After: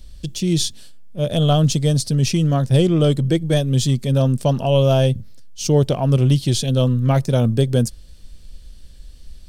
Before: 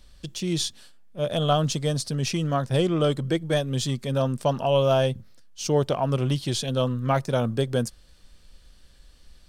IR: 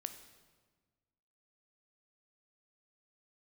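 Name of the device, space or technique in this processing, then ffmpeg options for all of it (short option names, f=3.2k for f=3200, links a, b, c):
smiley-face EQ: -af "lowshelf=f=170:g=8,equalizer=f=1.2k:t=o:w=1.6:g=-8,highshelf=f=9.3k:g=3.5,volume=5.5dB"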